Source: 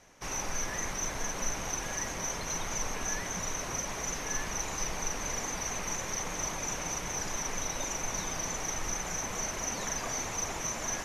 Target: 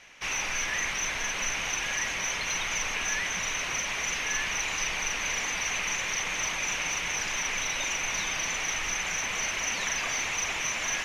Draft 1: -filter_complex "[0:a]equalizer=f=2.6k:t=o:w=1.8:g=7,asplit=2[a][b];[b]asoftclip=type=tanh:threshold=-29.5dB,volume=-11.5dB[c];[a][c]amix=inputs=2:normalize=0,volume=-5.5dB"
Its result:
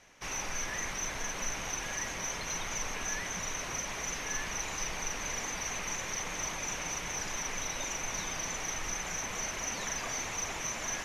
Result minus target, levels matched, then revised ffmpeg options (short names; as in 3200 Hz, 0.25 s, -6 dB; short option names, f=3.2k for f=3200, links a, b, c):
2000 Hz band -2.5 dB
-filter_complex "[0:a]equalizer=f=2.6k:t=o:w=1.8:g=19,asplit=2[a][b];[b]asoftclip=type=tanh:threshold=-29.5dB,volume=-11.5dB[c];[a][c]amix=inputs=2:normalize=0,volume=-5.5dB"